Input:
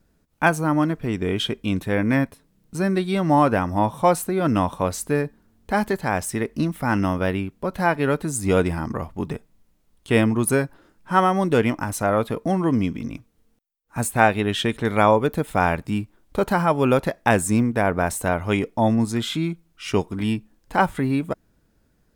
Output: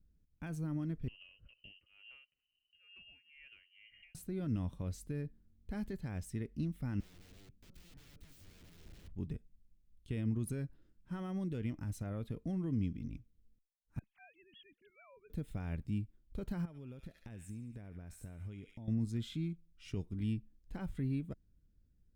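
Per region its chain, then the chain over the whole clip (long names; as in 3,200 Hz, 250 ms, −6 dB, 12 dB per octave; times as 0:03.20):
0:01.08–0:04.15: voice inversion scrambler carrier 3,000 Hz + downward compressor 12 to 1, threshold −30 dBFS + shaped tremolo triangle 2.2 Hz, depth 90%
0:07.00–0:09.12: downward compressor 8 to 1, threshold −27 dBFS + tube saturation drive 28 dB, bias 0.25 + wrap-around overflow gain 36.5 dB
0:13.99–0:15.30: three sine waves on the formant tracks + drawn EQ curve 210 Hz 0 dB, 340 Hz −25 dB, 2,700 Hz −11 dB
0:16.65–0:18.88: delay with a high-pass on its return 71 ms, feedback 44%, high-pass 2,100 Hz, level −5.5 dB + downward compressor 5 to 1, threshold −31 dBFS
whole clip: parametric band 11,000 Hz −7 dB 1.5 octaves; brickwall limiter −12.5 dBFS; guitar amp tone stack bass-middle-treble 10-0-1; level +3 dB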